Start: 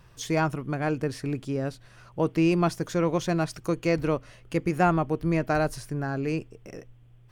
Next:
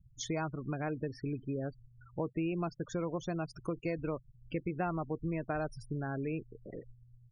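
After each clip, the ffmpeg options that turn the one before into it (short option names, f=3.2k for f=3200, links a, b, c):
-af "acompressor=threshold=-31dB:ratio=3,afftfilt=real='re*gte(hypot(re,im),0.0141)':imag='im*gte(hypot(re,im),0.0141)':win_size=1024:overlap=0.75,volume=-3dB"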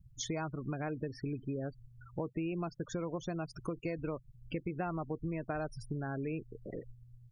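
-af "acompressor=threshold=-40dB:ratio=2,volume=3dB"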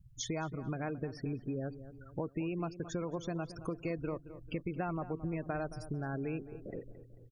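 -filter_complex "[0:a]asplit=2[a][b];[b]adelay=221,lowpass=f=1.5k:p=1,volume=-13dB,asplit=2[c][d];[d]adelay=221,lowpass=f=1.5k:p=1,volume=0.48,asplit=2[e][f];[f]adelay=221,lowpass=f=1.5k:p=1,volume=0.48,asplit=2[g][h];[h]adelay=221,lowpass=f=1.5k:p=1,volume=0.48,asplit=2[i][j];[j]adelay=221,lowpass=f=1.5k:p=1,volume=0.48[k];[a][c][e][g][i][k]amix=inputs=6:normalize=0"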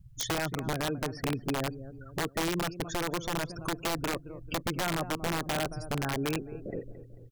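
-af "aeval=exprs='(mod(31.6*val(0)+1,2)-1)/31.6':c=same,volume=6dB"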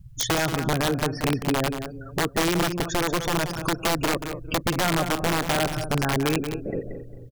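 -af "aecho=1:1:181:0.335,volume=7.5dB"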